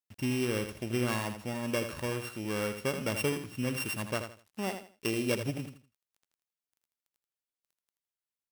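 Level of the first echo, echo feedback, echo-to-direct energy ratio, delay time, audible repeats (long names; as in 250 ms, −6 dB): −8.5 dB, 26%, −8.0 dB, 81 ms, 3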